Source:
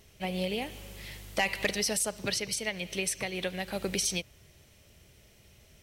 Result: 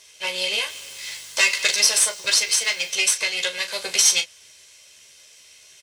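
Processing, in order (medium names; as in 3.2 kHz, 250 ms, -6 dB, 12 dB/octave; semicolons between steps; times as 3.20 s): comb filter that takes the minimum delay 1.9 ms; frequency weighting ITU-R 468; 0.68–2.89 s: added noise blue -58 dBFS; early reflections 13 ms -4 dB, 39 ms -10 dB; trim +3.5 dB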